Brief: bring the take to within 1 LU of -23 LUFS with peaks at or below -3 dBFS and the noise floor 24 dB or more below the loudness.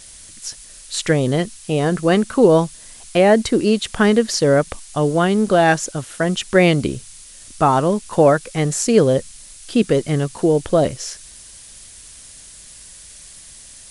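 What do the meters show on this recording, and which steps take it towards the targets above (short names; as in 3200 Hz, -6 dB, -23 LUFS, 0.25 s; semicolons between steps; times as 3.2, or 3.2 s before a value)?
noise floor -41 dBFS; noise floor target -42 dBFS; loudness -17.5 LUFS; peak -1.5 dBFS; loudness target -23.0 LUFS
-> noise print and reduce 6 dB; gain -5.5 dB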